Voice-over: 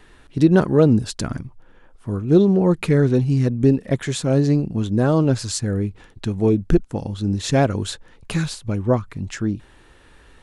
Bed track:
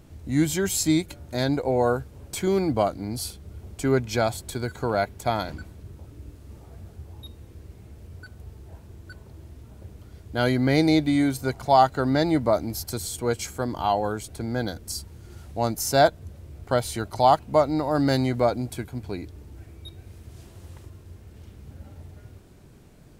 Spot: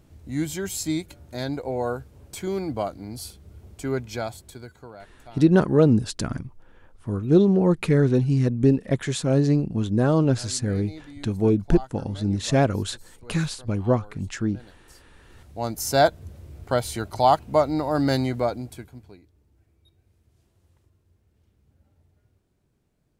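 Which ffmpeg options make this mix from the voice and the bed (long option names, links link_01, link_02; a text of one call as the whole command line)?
ffmpeg -i stem1.wav -i stem2.wav -filter_complex "[0:a]adelay=5000,volume=-2.5dB[link_01];[1:a]volume=16.5dB,afade=type=out:start_time=4.02:duration=0.98:silence=0.149624,afade=type=in:start_time=15.13:duration=0.81:silence=0.0841395,afade=type=out:start_time=18.13:duration=1.08:silence=0.105925[link_02];[link_01][link_02]amix=inputs=2:normalize=0" out.wav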